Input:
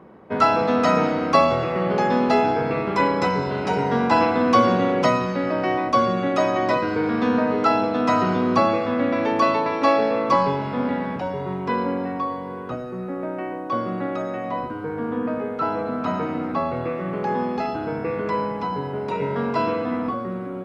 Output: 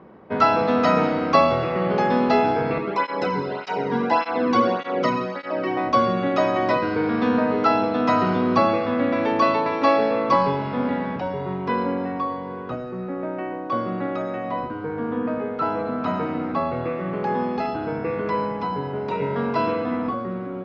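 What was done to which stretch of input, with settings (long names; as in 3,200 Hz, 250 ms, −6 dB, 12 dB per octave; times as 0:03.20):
0:02.78–0:05.77: through-zero flanger with one copy inverted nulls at 1.7 Hz, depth 1.7 ms
whole clip: low-pass filter 5,500 Hz 24 dB per octave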